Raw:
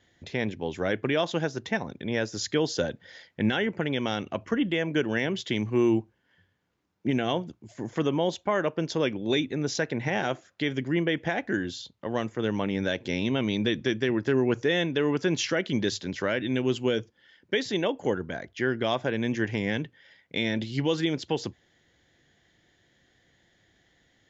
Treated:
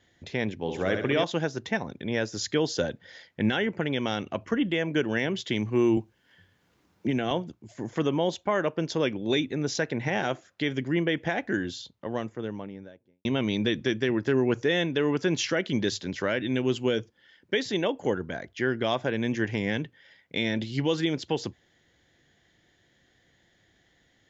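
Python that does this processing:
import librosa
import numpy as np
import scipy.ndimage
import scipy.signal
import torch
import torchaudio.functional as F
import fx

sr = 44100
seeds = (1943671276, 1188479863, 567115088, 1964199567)

y = fx.room_flutter(x, sr, wall_m=11.2, rt60_s=0.64, at=(0.59, 1.24))
y = fx.band_squash(y, sr, depth_pct=40, at=(5.97, 7.31))
y = fx.studio_fade_out(y, sr, start_s=11.7, length_s=1.55)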